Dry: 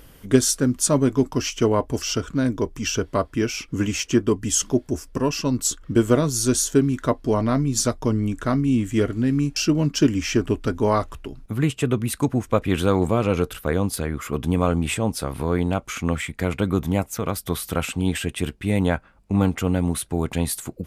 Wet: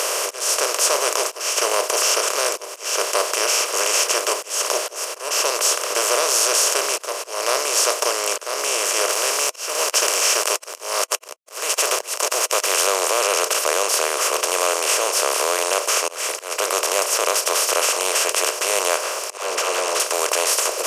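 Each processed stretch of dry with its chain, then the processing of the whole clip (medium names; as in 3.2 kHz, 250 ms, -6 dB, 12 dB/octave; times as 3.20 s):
9.09–12.87 s: high-pass 1 kHz 6 dB/octave + treble shelf 3.9 kHz +9.5 dB + small samples zeroed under -41 dBFS
19.37–20.00 s: distance through air 200 m + phase dispersion lows, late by 109 ms, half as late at 400 Hz + tape noise reduction on one side only encoder only
whole clip: spectral levelling over time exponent 0.2; inverse Chebyshev high-pass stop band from 260 Hz, stop band 40 dB; slow attack 254 ms; trim -4 dB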